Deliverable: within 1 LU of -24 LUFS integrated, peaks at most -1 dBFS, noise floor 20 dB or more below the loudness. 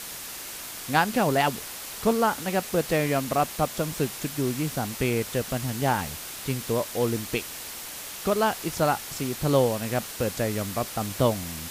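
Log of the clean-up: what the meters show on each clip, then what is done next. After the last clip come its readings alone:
noise floor -38 dBFS; noise floor target -47 dBFS; loudness -27.0 LUFS; peak level -7.5 dBFS; loudness target -24.0 LUFS
-> noise reduction 9 dB, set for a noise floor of -38 dBFS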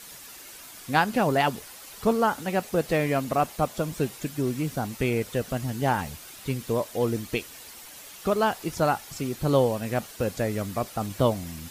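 noise floor -45 dBFS; noise floor target -47 dBFS
-> noise reduction 6 dB, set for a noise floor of -45 dBFS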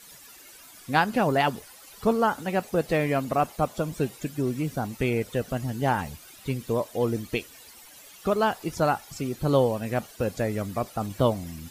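noise floor -49 dBFS; loudness -27.0 LUFS; peak level -7.5 dBFS; loudness target -24.0 LUFS
-> trim +3 dB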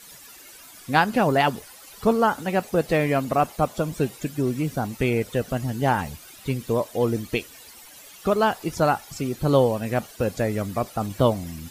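loudness -24.0 LUFS; peak level -4.5 dBFS; noise floor -46 dBFS

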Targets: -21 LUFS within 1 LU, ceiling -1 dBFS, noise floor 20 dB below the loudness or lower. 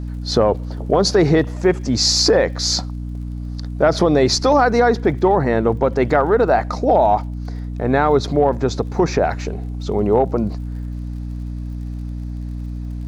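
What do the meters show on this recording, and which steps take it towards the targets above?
tick rate 45 per s; hum 60 Hz; highest harmonic 300 Hz; hum level -24 dBFS; loudness -17.0 LUFS; peak level -2.5 dBFS; loudness target -21.0 LUFS
-> de-click; de-hum 60 Hz, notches 5; trim -4 dB

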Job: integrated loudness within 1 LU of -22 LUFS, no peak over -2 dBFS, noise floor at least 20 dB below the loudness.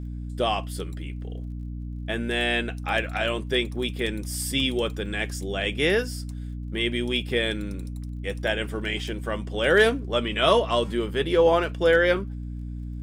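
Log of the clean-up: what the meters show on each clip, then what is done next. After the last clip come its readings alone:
tick rate 38 per s; hum 60 Hz; highest harmonic 300 Hz; hum level -31 dBFS; loudness -25.0 LUFS; peak level -8.0 dBFS; loudness target -22.0 LUFS
-> de-click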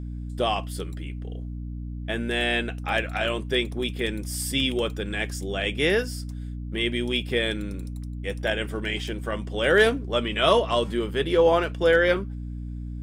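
tick rate 0.15 per s; hum 60 Hz; highest harmonic 300 Hz; hum level -31 dBFS
-> hum notches 60/120/180/240/300 Hz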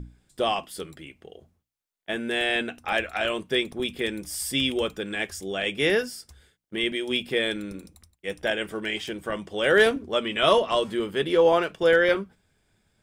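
hum not found; loudness -25.0 LUFS; peak level -8.0 dBFS; loudness target -22.0 LUFS
-> trim +3 dB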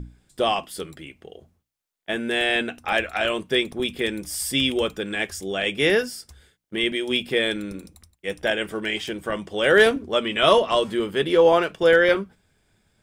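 loudness -22.0 LUFS; peak level -5.0 dBFS; noise floor -73 dBFS

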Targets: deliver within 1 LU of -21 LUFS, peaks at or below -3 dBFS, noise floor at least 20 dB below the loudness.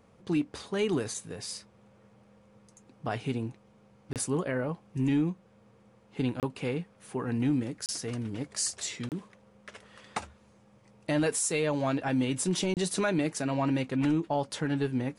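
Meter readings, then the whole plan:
dropouts 5; longest dropout 28 ms; loudness -31.0 LUFS; peak level -19.0 dBFS; loudness target -21.0 LUFS
-> interpolate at 4.13/6.40/7.86/9.09/12.74 s, 28 ms; trim +10 dB

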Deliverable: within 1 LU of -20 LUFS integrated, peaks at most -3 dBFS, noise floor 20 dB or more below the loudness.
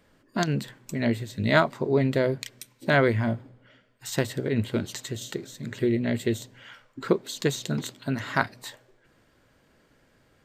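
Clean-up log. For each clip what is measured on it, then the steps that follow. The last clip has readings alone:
loudness -27.0 LUFS; peak level -5.0 dBFS; loudness target -20.0 LUFS
-> trim +7 dB; peak limiter -3 dBFS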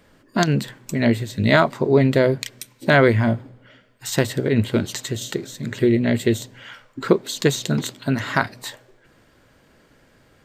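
loudness -20.5 LUFS; peak level -3.0 dBFS; noise floor -57 dBFS

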